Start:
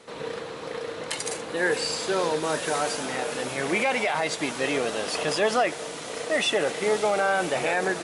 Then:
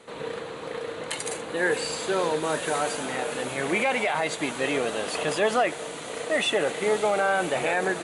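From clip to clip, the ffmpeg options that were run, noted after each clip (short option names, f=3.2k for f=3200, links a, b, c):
-af "equalizer=f=5.3k:w=4.3:g=-11"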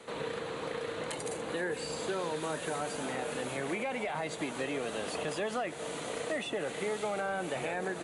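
-filter_complex "[0:a]acrossover=split=260|970[a][b][c];[a]acompressor=threshold=-43dB:ratio=4[d];[b]acompressor=threshold=-37dB:ratio=4[e];[c]acompressor=threshold=-41dB:ratio=4[f];[d][e][f]amix=inputs=3:normalize=0"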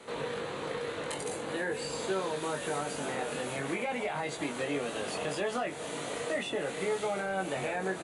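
-filter_complex "[0:a]asplit=2[a][b];[b]adelay=21,volume=-4dB[c];[a][c]amix=inputs=2:normalize=0"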